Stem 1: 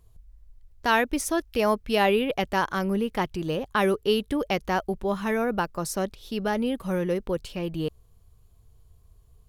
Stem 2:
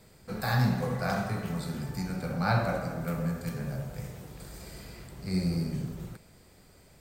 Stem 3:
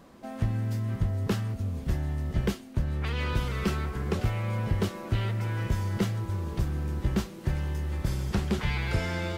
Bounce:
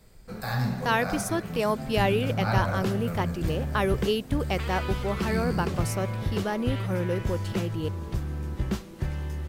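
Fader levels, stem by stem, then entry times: -3.0 dB, -2.0 dB, -1.5 dB; 0.00 s, 0.00 s, 1.55 s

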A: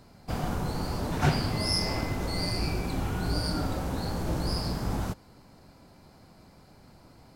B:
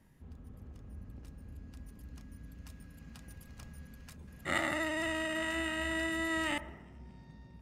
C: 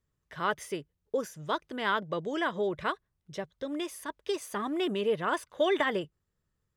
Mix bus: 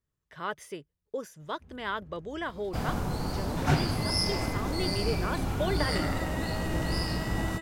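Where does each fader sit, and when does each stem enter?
-0.5 dB, -4.0 dB, -4.5 dB; 2.45 s, 1.40 s, 0.00 s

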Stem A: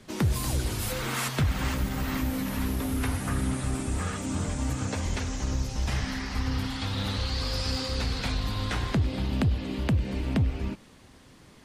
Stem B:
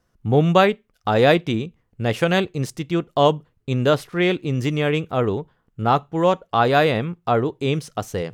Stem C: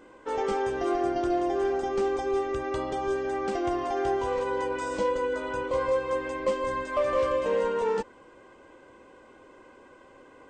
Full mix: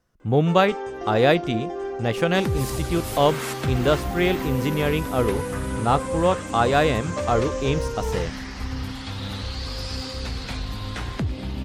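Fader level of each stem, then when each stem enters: -1.0 dB, -2.5 dB, -3.5 dB; 2.25 s, 0.00 s, 0.20 s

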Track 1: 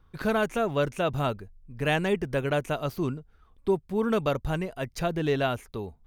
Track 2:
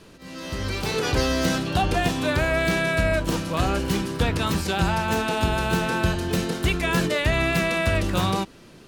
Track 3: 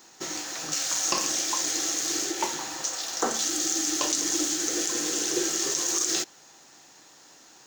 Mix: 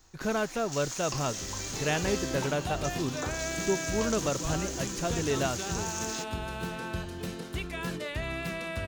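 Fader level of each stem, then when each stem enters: -4.0 dB, -12.5 dB, -11.0 dB; 0.00 s, 0.90 s, 0.00 s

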